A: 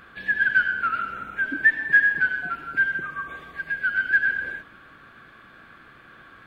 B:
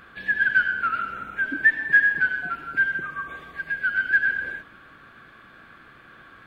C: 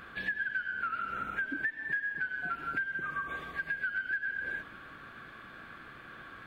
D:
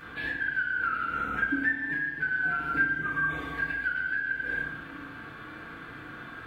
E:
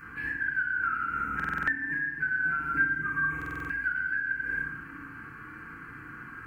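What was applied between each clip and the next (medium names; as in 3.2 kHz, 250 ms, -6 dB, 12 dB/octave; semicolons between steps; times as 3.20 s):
no audible change
compression 12:1, threshold -31 dBFS, peak gain reduction 19 dB
FDN reverb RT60 0.79 s, low-frequency decay 1.6×, high-frequency decay 0.65×, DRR -6.5 dB; trim -1.5 dB
static phaser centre 1.5 kHz, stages 4; buffer glitch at 1.35/3.37 s, samples 2048, times 6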